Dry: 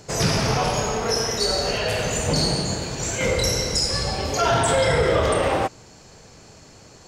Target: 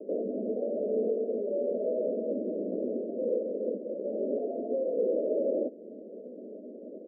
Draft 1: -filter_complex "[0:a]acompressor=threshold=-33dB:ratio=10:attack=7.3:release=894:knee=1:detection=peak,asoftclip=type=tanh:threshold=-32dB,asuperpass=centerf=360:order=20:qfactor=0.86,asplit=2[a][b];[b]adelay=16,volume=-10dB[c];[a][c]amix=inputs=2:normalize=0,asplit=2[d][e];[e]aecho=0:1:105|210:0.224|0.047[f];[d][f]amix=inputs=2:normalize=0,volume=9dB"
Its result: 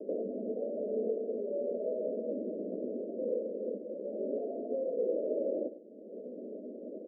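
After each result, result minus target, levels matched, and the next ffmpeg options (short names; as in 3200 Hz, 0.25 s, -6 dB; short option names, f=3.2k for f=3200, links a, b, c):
compressor: peak gain reduction +9 dB; echo-to-direct +11 dB
-filter_complex "[0:a]acompressor=threshold=-23dB:ratio=10:attack=7.3:release=894:knee=1:detection=peak,asoftclip=type=tanh:threshold=-32dB,asuperpass=centerf=360:order=20:qfactor=0.86,asplit=2[a][b];[b]adelay=16,volume=-10dB[c];[a][c]amix=inputs=2:normalize=0,asplit=2[d][e];[e]aecho=0:1:105|210:0.224|0.047[f];[d][f]amix=inputs=2:normalize=0,volume=9dB"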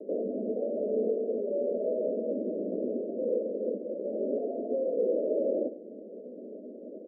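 echo-to-direct +11 dB
-filter_complex "[0:a]acompressor=threshold=-23dB:ratio=10:attack=7.3:release=894:knee=1:detection=peak,asoftclip=type=tanh:threshold=-32dB,asuperpass=centerf=360:order=20:qfactor=0.86,asplit=2[a][b];[b]adelay=16,volume=-10dB[c];[a][c]amix=inputs=2:normalize=0,asplit=2[d][e];[e]aecho=0:1:105|210:0.0631|0.0133[f];[d][f]amix=inputs=2:normalize=0,volume=9dB"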